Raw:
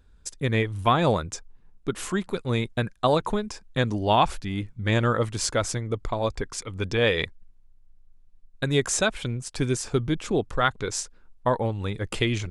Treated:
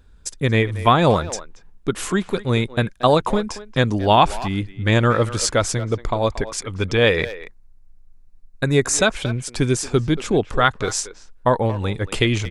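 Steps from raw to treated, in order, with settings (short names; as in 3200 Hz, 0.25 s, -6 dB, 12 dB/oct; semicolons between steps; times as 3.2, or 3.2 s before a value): 7.09–8.95 bell 3200 Hz -14 dB 0.26 oct; speakerphone echo 0.23 s, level -14 dB; gain +6 dB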